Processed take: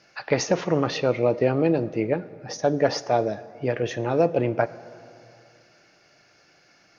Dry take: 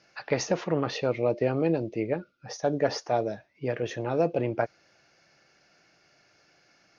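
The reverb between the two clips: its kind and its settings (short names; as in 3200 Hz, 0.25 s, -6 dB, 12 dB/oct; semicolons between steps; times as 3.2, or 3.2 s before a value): plate-style reverb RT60 2.6 s, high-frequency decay 0.55×, DRR 16 dB; gain +4.5 dB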